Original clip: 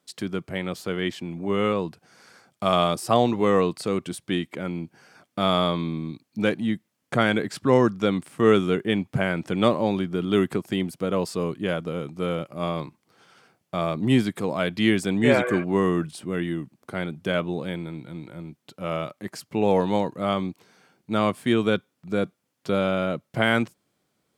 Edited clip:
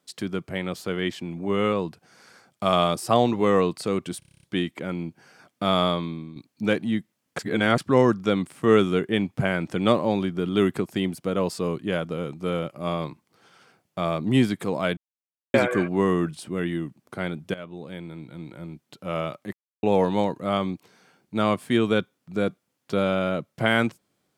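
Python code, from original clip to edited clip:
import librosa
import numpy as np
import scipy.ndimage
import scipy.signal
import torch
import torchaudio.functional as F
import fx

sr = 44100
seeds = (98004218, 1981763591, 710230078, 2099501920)

y = fx.edit(x, sr, fx.stutter(start_s=4.19, slice_s=0.03, count=9),
    fx.fade_out_to(start_s=5.61, length_s=0.51, floor_db=-11.0),
    fx.reverse_span(start_s=7.15, length_s=0.39),
    fx.silence(start_s=14.73, length_s=0.57),
    fx.fade_in_from(start_s=17.3, length_s=1.05, floor_db=-17.0),
    fx.silence(start_s=19.29, length_s=0.3), tone=tone)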